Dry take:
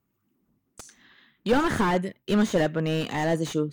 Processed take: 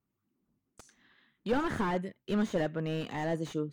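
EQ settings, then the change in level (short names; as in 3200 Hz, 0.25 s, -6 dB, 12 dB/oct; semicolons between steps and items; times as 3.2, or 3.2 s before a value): high shelf 3900 Hz -6.5 dB; -7.5 dB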